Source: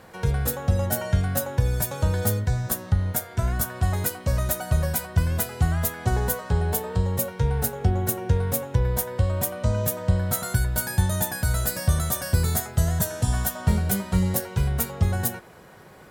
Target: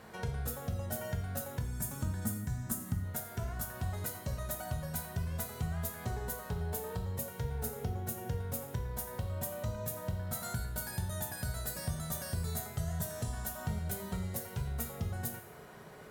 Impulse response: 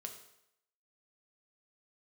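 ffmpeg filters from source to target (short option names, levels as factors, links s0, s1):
-filter_complex "[0:a]acompressor=threshold=0.02:ratio=2.5,asettb=1/sr,asplit=3[s0][s1][s2];[s0]atrim=end=1.614[s3];[s1]atrim=start=1.61:end=3.04,asetpts=PTS-STARTPTS,afade=t=in:d=0.004:c=qsin,afade=t=out:st=1.426:d=0.004:c=qsin,equalizer=f=250:t=o:w=1:g=11,equalizer=f=500:t=o:w=1:g=-11,equalizer=f=4000:t=o:w=1:g=-7,equalizer=f=8000:t=o:w=1:g=6[s4];[s2]atrim=start=3.036[s5];[s3][s4]acrossfade=d=0.004:c1=hsin:c2=qsin[s6];[s6][s5]acrossfade=d=0.004:c1=qsin:c2=hsin[s7];[1:a]atrim=start_sample=2205[s8];[s7][s8]afir=irnorm=-1:irlink=0"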